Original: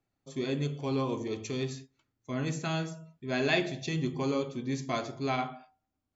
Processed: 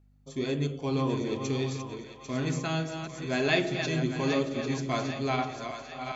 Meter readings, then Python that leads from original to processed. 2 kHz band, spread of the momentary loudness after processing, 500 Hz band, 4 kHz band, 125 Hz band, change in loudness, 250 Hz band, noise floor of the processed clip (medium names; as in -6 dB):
+3.0 dB, 11 LU, +2.5 dB, +3.0 dB, +3.0 dB, +2.5 dB, +2.5 dB, -49 dBFS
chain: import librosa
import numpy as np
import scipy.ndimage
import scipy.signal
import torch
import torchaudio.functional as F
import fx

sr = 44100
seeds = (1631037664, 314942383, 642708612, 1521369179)

y = fx.reverse_delay(x, sr, ms=408, wet_db=-7.5)
y = fx.add_hum(y, sr, base_hz=50, snr_db=30)
y = fx.echo_split(y, sr, split_hz=600.0, low_ms=112, high_ms=796, feedback_pct=52, wet_db=-9)
y = y * librosa.db_to_amplitude(1.5)